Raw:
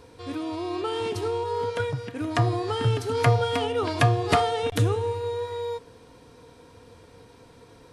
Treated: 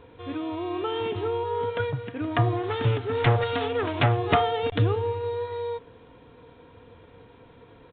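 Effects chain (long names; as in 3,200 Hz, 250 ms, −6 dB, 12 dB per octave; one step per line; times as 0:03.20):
0:02.56–0:04.19: phase distortion by the signal itself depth 0.6 ms
downsampling to 8,000 Hz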